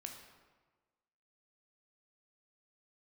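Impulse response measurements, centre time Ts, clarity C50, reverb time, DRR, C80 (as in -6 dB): 36 ms, 5.5 dB, 1.4 s, 2.5 dB, 7.5 dB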